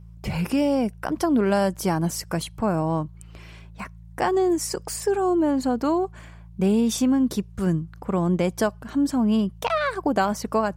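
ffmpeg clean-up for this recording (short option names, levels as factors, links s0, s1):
-af "bandreject=f=55.9:t=h:w=4,bandreject=f=111.8:t=h:w=4,bandreject=f=167.7:t=h:w=4"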